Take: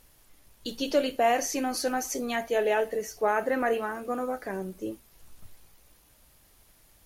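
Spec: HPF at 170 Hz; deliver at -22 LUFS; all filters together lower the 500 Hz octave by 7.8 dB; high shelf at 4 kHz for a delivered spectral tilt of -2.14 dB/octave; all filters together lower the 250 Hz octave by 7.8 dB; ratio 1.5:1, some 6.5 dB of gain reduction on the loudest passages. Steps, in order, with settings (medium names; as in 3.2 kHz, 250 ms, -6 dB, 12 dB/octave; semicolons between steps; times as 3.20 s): high-pass 170 Hz; peaking EQ 250 Hz -5.5 dB; peaking EQ 500 Hz -8.5 dB; treble shelf 4 kHz -7 dB; compression 1.5:1, threshold -43 dBFS; trim +17.5 dB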